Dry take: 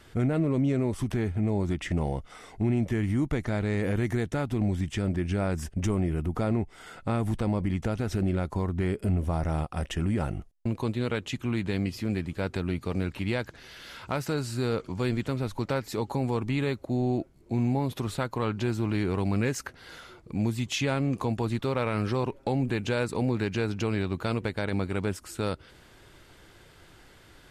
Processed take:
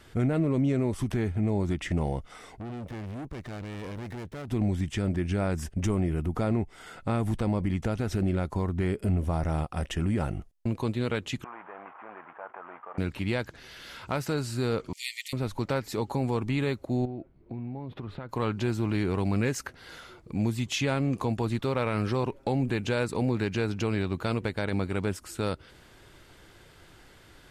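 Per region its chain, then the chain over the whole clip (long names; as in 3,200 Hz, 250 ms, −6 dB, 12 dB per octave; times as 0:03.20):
0:02.56–0:04.48: tube saturation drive 35 dB, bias 0.7 + windowed peak hold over 5 samples
0:11.44–0:12.98: variable-slope delta modulation 16 kbit/s + flat-topped band-pass 1,000 Hz, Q 1.5 + envelope flattener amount 50%
0:14.93–0:15.33: linear-phase brick-wall high-pass 1,800 Hz + spectral tilt +3.5 dB per octave
0:17.05–0:18.29: downward compressor 10 to 1, threshold −32 dBFS + high-frequency loss of the air 390 metres
whole clip: no processing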